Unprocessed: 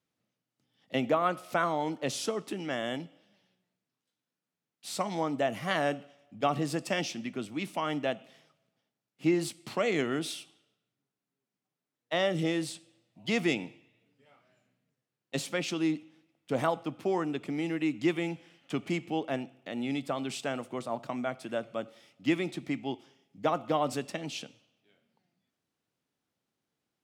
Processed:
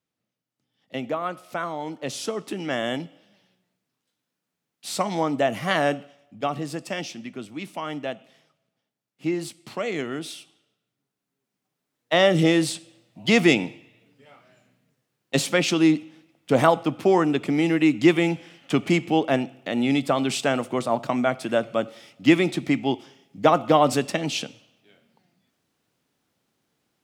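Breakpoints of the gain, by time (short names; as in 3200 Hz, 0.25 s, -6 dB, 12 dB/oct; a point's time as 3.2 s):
1.75 s -1 dB
2.76 s +7 dB
5.94 s +7 dB
6.57 s +0.5 dB
10.29 s +0.5 dB
12.35 s +11 dB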